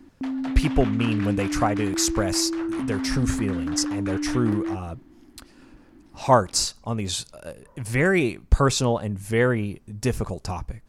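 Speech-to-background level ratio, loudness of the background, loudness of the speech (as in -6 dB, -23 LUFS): 4.0 dB, -28.5 LUFS, -24.5 LUFS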